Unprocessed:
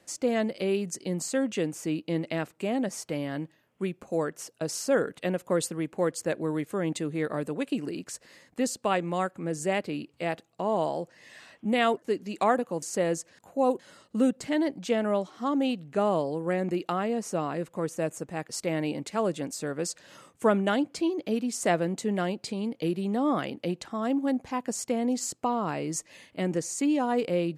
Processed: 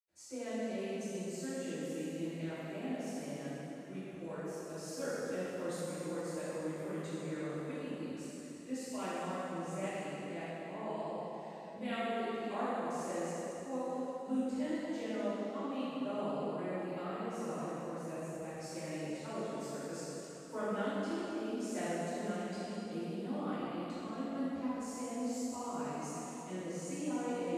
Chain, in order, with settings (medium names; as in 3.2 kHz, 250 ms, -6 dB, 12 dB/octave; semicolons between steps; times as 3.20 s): peaking EQ 83 Hz +13 dB 0.23 oct; reverberation RT60 3.4 s, pre-delay 76 ms; trim +3.5 dB